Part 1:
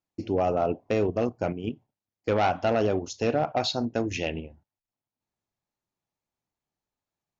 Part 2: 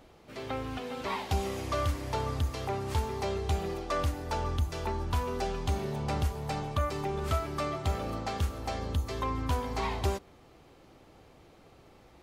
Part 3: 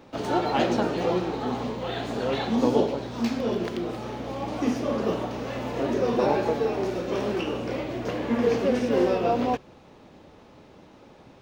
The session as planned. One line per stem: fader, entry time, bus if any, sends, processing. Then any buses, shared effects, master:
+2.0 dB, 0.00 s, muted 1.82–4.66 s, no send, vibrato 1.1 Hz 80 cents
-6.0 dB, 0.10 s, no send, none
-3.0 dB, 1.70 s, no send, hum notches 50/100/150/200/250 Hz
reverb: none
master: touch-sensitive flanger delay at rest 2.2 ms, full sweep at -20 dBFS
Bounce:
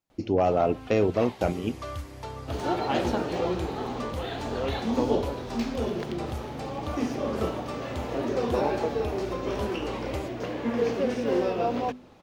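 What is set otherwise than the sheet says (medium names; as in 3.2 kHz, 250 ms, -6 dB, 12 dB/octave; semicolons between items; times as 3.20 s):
stem 1: missing vibrato 1.1 Hz 80 cents; stem 3: entry 1.70 s -> 2.35 s; master: missing touch-sensitive flanger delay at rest 2.2 ms, full sweep at -20 dBFS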